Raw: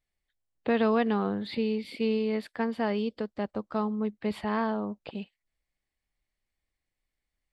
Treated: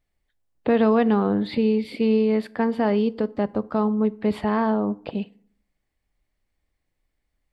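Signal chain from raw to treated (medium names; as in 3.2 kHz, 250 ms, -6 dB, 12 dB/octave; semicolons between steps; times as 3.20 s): in parallel at 0 dB: peak limiter -24 dBFS, peak gain reduction 8.5 dB; on the sum: tilt shelf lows +4 dB, about 1.4 kHz; FDN reverb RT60 0.58 s, low-frequency decay 1.2×, high-frequency decay 0.65×, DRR 16.5 dB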